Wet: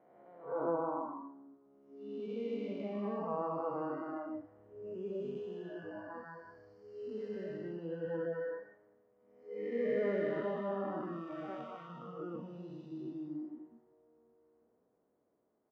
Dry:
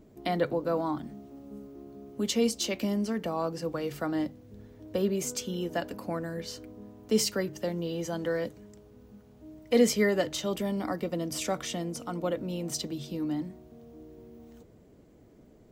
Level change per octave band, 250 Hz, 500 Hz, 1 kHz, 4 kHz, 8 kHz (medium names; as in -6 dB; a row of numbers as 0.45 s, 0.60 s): -10.5 dB, -7.0 dB, -5.0 dB, under -25 dB, under -40 dB